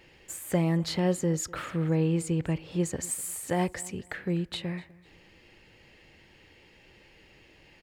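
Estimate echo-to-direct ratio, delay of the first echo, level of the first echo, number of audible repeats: -21.5 dB, 249 ms, -22.0 dB, 2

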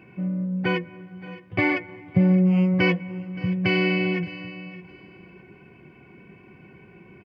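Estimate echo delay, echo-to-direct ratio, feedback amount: 572 ms, -15.5 dB, no regular repeats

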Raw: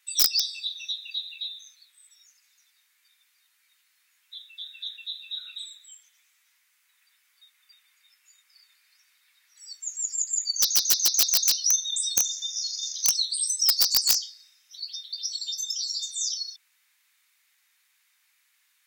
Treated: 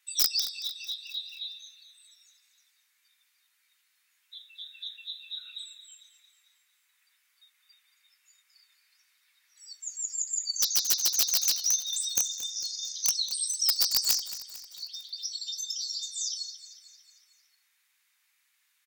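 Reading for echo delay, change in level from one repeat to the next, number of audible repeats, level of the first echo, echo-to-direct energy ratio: 225 ms, -5.5 dB, 4, -14.0 dB, -12.5 dB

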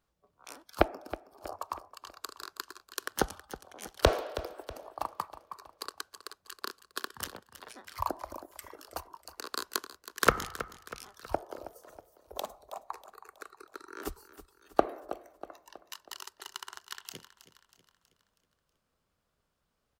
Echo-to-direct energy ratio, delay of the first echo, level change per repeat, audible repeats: -13.5 dB, 321 ms, -6.0 dB, 4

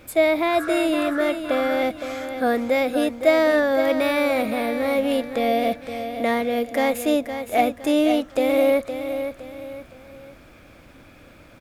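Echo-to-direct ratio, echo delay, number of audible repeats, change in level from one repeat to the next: -8.5 dB, 514 ms, 3, -8.5 dB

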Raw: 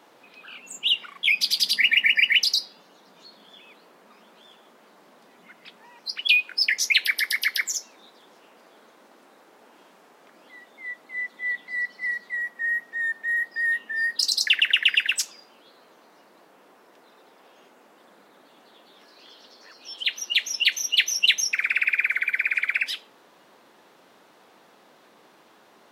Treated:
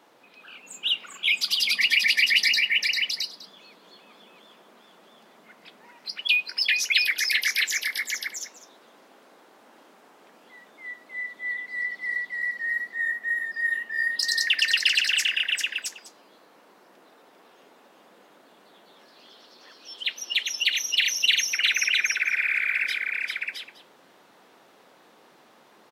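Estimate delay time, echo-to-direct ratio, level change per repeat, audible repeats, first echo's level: 396 ms, -1.0 dB, no regular repeats, 3, -4.0 dB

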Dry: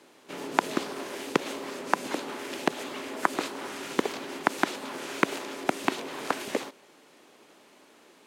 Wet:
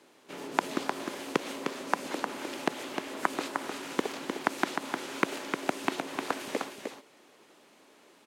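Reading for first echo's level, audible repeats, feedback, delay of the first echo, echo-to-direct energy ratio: -5.5 dB, 1, no regular repeats, 306 ms, -5.5 dB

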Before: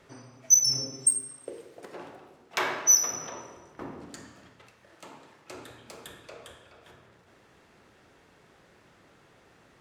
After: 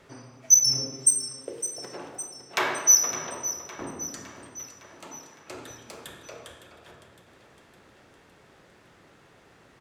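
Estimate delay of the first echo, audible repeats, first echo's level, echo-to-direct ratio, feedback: 560 ms, 5, -14.0 dB, -12.0 dB, 58%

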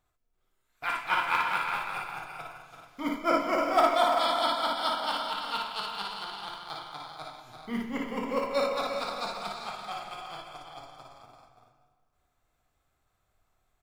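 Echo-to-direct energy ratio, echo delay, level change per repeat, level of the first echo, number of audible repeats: 0.0 dB, 56 ms, no regular repeats, -2.0 dB, 5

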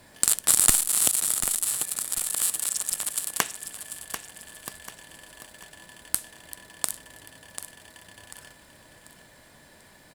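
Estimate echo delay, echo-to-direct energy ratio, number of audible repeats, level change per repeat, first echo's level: 741 ms, -9.5 dB, 3, -8.5 dB, -10.0 dB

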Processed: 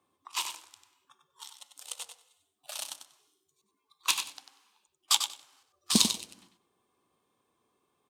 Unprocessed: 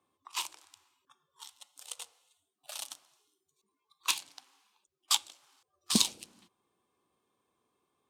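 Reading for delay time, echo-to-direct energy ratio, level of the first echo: 95 ms, -8.0 dB, -8.0 dB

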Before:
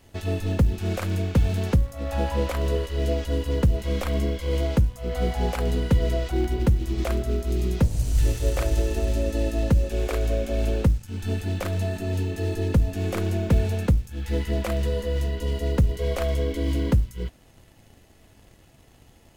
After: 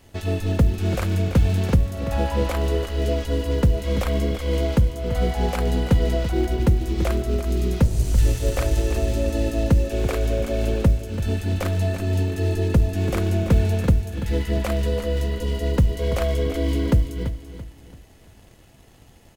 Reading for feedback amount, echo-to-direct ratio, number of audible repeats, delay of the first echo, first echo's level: 35%, -10.5 dB, 3, 336 ms, -11.0 dB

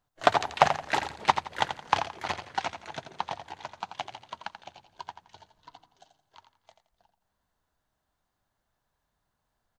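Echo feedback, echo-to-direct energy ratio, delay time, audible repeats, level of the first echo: 29%, -8.5 dB, 85 ms, 3, -9.0 dB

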